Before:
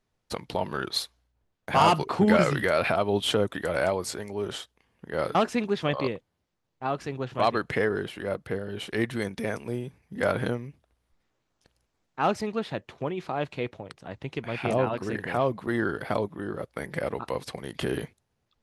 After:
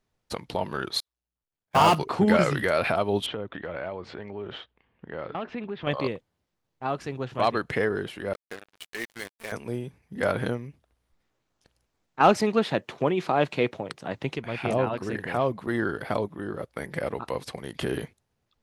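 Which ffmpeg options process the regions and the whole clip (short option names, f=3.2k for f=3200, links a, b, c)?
-filter_complex "[0:a]asettb=1/sr,asplit=3[a][b][c];[a]atrim=end=1.004[d];[b]atrim=start=1:end=1.95,asetpts=PTS-STARTPTS,afade=t=in:d=0.004:c=qsin,afade=t=out:st=0.946:d=0.004:c=qsin,aeval=exprs='val(0)+0.5*0.0398*sgn(val(0))':c=same,agate=range=-58dB:threshold=-24dB:ratio=16:release=100:detection=peak[e];[c]atrim=start=1.946[f];[d][e]acrossfade=d=0.004:c1=hsin:c2=qsin[g];[g][f]acrossfade=d=0.004:c1=qsin:c2=hsin,asettb=1/sr,asplit=3[h][i][j];[h]atrim=end=3.264[k];[i]atrim=start=3.26:end=5.87,asetpts=PTS-STARTPTS,afade=t=in:d=0.004:c=qsin,afade=t=out:st=2.606:d=0.004:c=qsin,lowpass=f=3.3k:w=0.5412,lowpass=f=3.3k:w=1.3066,acompressor=threshold=-33dB:ratio=2.5:attack=3.2:release=140:knee=1:detection=peak[l];[j]atrim=start=5.866[m];[k][l]acrossfade=d=0.004:c1=hsin:c2=qsin[n];[n][m]acrossfade=d=0.004:c1=qsin:c2=hsin,asettb=1/sr,asplit=3[o][p][q];[o]atrim=end=8.334[r];[p]atrim=start=8.33:end=9.52,asetpts=PTS-STARTPTS,afade=t=in:d=0.004:c=qsin,afade=t=out:st=1.186:d=0.004:c=qsin,agate=range=-33dB:threshold=-33dB:ratio=3:release=100:detection=peak,highpass=f=1.3k:p=1,acrusher=bits=5:mix=0:aa=0.5[s];[q]atrim=start=9.516[t];[r][s]acrossfade=d=0.004:c1=hsin:c2=qsin[u];[u][t]acrossfade=d=0.004:c1=qsin:c2=hsin,asettb=1/sr,asplit=3[v][w][x];[v]atrim=end=12.204[y];[w]atrim=start=12.2:end=14.36,asetpts=PTS-STARTPTS,afade=t=in:d=0.004:c=qsin,afade=t=out:st=2.156:d=0.004:c=qsin,highpass=140,acontrast=86[z];[x]atrim=start=14.356[aa];[y][z]acrossfade=d=0.004:c1=hsin:c2=qsin[ab];[ab][aa]acrossfade=d=0.004:c1=qsin:c2=hsin"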